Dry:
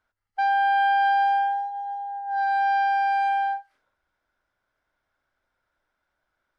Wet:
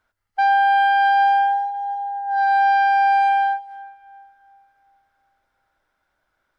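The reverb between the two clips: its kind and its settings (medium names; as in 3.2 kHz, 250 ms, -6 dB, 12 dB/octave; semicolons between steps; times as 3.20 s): algorithmic reverb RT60 3 s, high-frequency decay 0.7×, DRR 20 dB; trim +5.5 dB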